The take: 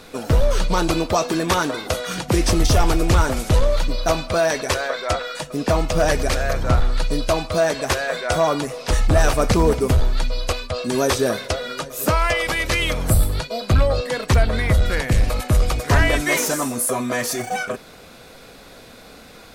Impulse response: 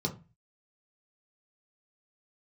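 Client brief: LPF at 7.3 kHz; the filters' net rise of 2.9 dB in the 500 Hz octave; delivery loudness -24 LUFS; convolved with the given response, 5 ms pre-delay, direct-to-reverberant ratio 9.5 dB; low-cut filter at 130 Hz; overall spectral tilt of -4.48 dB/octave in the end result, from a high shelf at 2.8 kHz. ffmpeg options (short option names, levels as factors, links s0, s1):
-filter_complex "[0:a]highpass=130,lowpass=7300,equalizer=f=500:t=o:g=3.5,highshelf=f=2800:g=4,asplit=2[s0][s1];[1:a]atrim=start_sample=2205,adelay=5[s2];[s1][s2]afir=irnorm=-1:irlink=0,volume=0.2[s3];[s0][s3]amix=inputs=2:normalize=0,volume=0.562"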